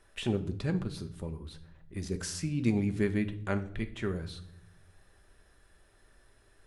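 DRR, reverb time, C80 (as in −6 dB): 7.0 dB, 0.70 s, 18.0 dB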